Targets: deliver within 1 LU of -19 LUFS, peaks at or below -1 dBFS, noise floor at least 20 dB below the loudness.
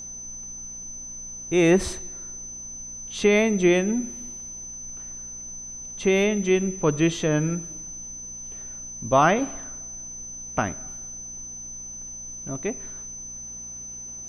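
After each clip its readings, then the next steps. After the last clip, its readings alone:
hum 60 Hz; harmonics up to 240 Hz; hum level -49 dBFS; steady tone 6100 Hz; tone level -35 dBFS; loudness -26.5 LUFS; peak -6.5 dBFS; loudness target -19.0 LUFS
-> de-hum 60 Hz, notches 4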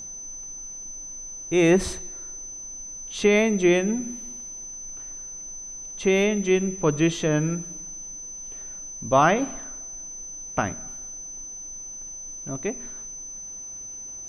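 hum none; steady tone 6100 Hz; tone level -35 dBFS
-> notch 6100 Hz, Q 30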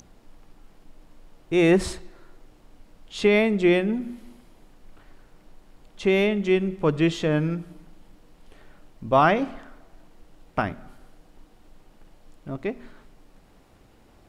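steady tone none; loudness -23.0 LUFS; peak -6.5 dBFS; loudness target -19.0 LUFS
-> gain +4 dB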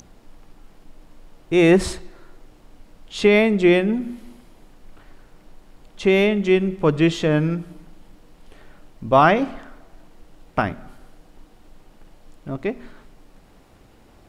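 loudness -19.0 LUFS; peak -2.5 dBFS; noise floor -52 dBFS

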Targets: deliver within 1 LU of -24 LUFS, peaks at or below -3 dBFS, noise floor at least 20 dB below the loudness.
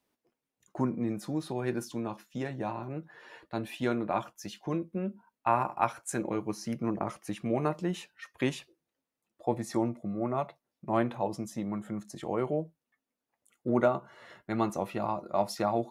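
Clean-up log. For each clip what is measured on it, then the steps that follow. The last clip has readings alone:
loudness -33.0 LUFS; peak -10.5 dBFS; loudness target -24.0 LUFS
-> gain +9 dB; limiter -3 dBFS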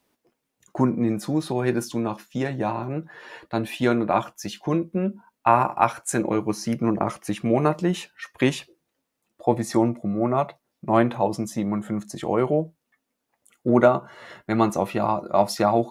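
loudness -24.0 LUFS; peak -3.0 dBFS; noise floor -80 dBFS

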